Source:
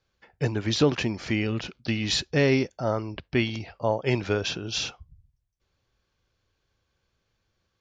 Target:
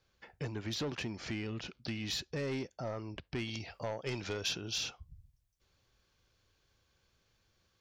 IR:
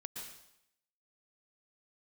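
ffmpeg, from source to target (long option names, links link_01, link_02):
-af "asoftclip=type=tanh:threshold=-19dB,acompressor=threshold=-45dB:ratio=2,asetnsamples=nb_out_samples=441:pad=0,asendcmd='3.48 highshelf g 11;4.61 highshelf g 5.5',highshelf=frequency=3200:gain=2"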